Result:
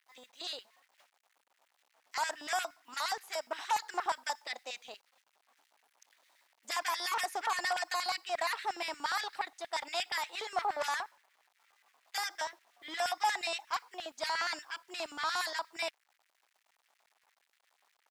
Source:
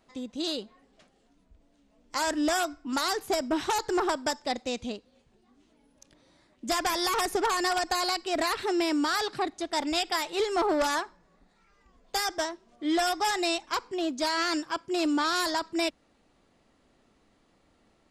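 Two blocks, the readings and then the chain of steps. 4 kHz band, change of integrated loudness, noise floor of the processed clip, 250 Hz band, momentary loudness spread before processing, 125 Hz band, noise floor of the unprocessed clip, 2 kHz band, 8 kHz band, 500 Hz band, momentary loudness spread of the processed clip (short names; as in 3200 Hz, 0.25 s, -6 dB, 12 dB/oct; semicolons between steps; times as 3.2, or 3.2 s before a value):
-6.5 dB, -7.0 dB, -77 dBFS, -25.5 dB, 7 LU, under -15 dB, -67 dBFS, -4.0 dB, -7.5 dB, -11.5 dB, 9 LU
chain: bit-crush 10-bit; LFO high-pass square 8.5 Hz 810–1900 Hz; gain -8 dB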